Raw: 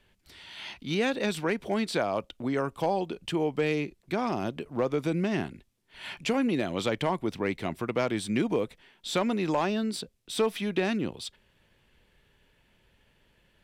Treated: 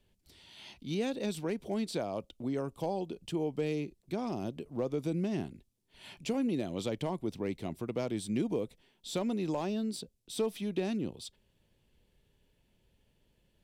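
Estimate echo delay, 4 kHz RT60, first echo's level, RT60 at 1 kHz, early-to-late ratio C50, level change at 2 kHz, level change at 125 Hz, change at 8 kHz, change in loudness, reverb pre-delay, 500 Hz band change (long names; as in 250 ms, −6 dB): no echo audible, no reverb audible, no echo audible, no reverb audible, no reverb audible, −13.5 dB, −4.0 dB, −4.5 dB, −5.5 dB, no reverb audible, −6.0 dB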